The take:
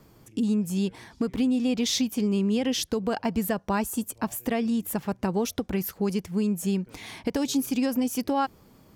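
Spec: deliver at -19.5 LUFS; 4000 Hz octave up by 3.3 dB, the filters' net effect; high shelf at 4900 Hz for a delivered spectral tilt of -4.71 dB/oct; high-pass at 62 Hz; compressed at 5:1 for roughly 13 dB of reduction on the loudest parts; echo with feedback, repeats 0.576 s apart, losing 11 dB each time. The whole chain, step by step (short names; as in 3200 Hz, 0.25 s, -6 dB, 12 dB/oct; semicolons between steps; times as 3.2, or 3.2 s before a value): HPF 62 Hz; bell 4000 Hz +6.5 dB; high shelf 4900 Hz -5 dB; compressor 5:1, threshold -36 dBFS; feedback echo 0.576 s, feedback 28%, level -11 dB; gain +19 dB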